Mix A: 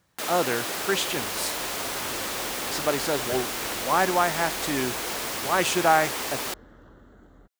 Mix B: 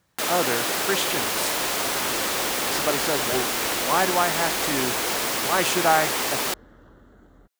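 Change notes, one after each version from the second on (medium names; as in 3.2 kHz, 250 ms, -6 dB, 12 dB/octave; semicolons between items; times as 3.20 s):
first sound +5.5 dB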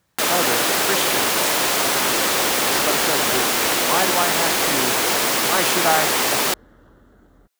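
first sound +6.0 dB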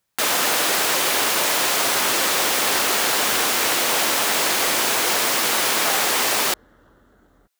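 speech -11.0 dB; master: add bass shelf 450 Hz -6 dB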